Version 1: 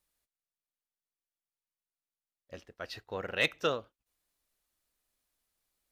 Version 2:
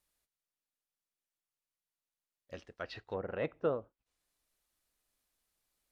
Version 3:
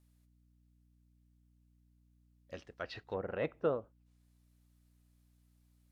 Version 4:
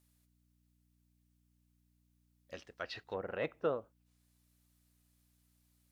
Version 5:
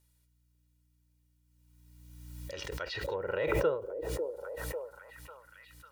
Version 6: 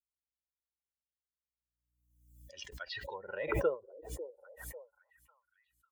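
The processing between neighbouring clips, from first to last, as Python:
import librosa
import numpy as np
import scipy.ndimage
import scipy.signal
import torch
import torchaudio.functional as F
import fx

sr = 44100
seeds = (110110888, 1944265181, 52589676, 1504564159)

y1 = fx.env_lowpass_down(x, sr, base_hz=860.0, full_db=-33.5)
y2 = fx.add_hum(y1, sr, base_hz=60, snr_db=24)
y3 = fx.tilt_eq(y2, sr, slope=1.5)
y4 = y3 + 0.69 * np.pad(y3, (int(2.1 * sr / 1000.0), 0))[:len(y3)]
y4 = fx.echo_stepped(y4, sr, ms=547, hz=390.0, octaves=0.7, feedback_pct=70, wet_db=-5.0)
y4 = fx.pre_swell(y4, sr, db_per_s=28.0)
y5 = fx.bin_expand(y4, sr, power=2.0)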